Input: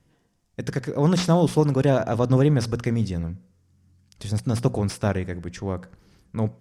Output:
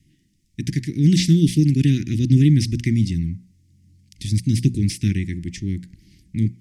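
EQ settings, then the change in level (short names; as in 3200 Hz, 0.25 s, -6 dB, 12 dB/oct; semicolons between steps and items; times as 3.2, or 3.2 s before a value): Chebyshev band-stop 330–2000 Hz, order 4; +5.5 dB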